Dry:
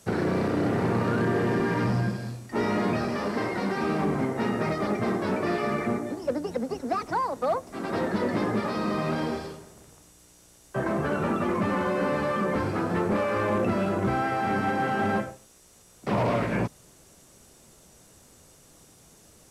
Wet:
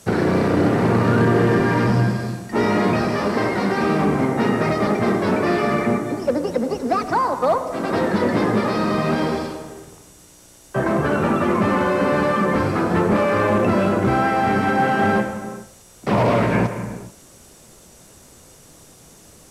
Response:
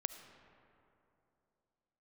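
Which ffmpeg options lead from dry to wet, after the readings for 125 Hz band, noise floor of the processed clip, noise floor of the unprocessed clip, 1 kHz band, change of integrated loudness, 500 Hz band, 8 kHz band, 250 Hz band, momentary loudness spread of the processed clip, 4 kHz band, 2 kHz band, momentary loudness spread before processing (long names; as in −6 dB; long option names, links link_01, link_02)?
+8.0 dB, −48 dBFS, −56 dBFS, +8.0 dB, +8.0 dB, +8.0 dB, +7.5 dB, +8.0 dB, 7 LU, +7.5 dB, +8.0 dB, 5 LU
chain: -filter_complex "[1:a]atrim=start_sample=2205,afade=type=out:start_time=0.4:duration=0.01,atrim=end_sample=18081,asetrate=34398,aresample=44100[link_01];[0:a][link_01]afir=irnorm=-1:irlink=0,volume=7.5dB"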